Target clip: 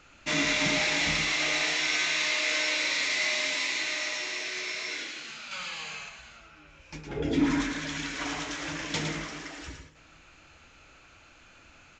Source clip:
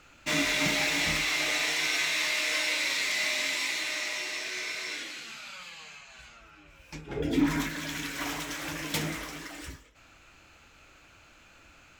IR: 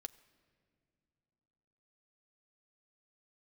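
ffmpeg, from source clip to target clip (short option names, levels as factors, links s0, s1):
-filter_complex "[0:a]asettb=1/sr,asplit=3[s0][s1][s2];[s0]atrim=end=5.514[s3];[s1]atrim=start=5.51:end=6.09,asetpts=PTS-STARTPTS,afade=t=in:d=0.004:c=qsin,afade=t=out:st=0.576:d=0.004:c=qsin,acontrast=78[s4];[s2]atrim=start=6.086[s5];[s3][s4]acrossfade=d=0.004:c1=hsin:c2=qsin[s6];[s6][s5]acrossfade=d=0.004:c1=qsin:c2=hsin,asplit=2[s7][s8];[1:a]atrim=start_sample=2205,adelay=111[s9];[s8][s9]afir=irnorm=-1:irlink=0,volume=0.841[s10];[s7][s10]amix=inputs=2:normalize=0,aresample=16000,aresample=44100"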